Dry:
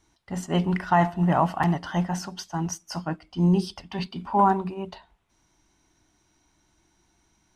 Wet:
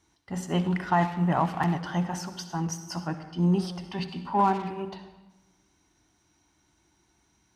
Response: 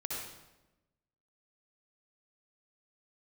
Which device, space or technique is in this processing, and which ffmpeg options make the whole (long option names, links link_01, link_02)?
saturated reverb return: -filter_complex "[0:a]asplit=2[link_01][link_02];[1:a]atrim=start_sample=2205[link_03];[link_02][link_03]afir=irnorm=-1:irlink=0,asoftclip=type=tanh:threshold=-25dB,volume=-6dB[link_04];[link_01][link_04]amix=inputs=2:normalize=0,highpass=54,equalizer=frequency=630:width=5.9:gain=-3,volume=-4dB"